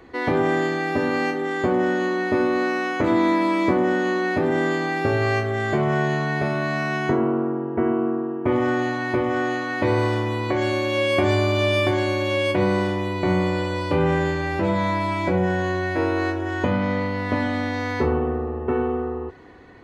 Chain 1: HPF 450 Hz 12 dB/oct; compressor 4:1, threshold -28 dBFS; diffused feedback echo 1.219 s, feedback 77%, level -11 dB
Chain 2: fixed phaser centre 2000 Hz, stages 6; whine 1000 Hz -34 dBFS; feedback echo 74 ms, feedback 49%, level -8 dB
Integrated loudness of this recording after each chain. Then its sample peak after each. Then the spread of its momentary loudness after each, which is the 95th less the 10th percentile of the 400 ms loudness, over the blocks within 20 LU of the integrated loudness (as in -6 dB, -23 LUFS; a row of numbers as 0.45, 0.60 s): -30.0, -25.5 LUFS; -15.0, -10.5 dBFS; 2, 4 LU